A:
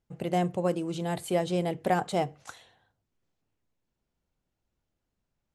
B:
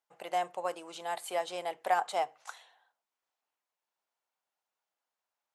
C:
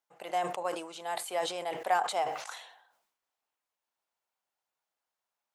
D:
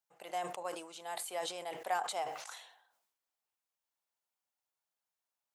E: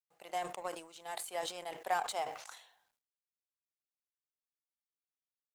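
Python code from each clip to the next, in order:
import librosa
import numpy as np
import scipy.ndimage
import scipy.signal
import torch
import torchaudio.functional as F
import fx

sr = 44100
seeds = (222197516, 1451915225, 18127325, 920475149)

y1 = fx.highpass_res(x, sr, hz=850.0, q=1.6)
y1 = y1 * librosa.db_to_amplitude(-2.5)
y2 = fx.sustainer(y1, sr, db_per_s=72.0)
y3 = fx.high_shelf(y2, sr, hz=4400.0, db=6.5)
y3 = y3 * librosa.db_to_amplitude(-7.0)
y4 = fx.law_mismatch(y3, sr, coded='A')
y4 = y4 * librosa.db_to_amplitude(2.5)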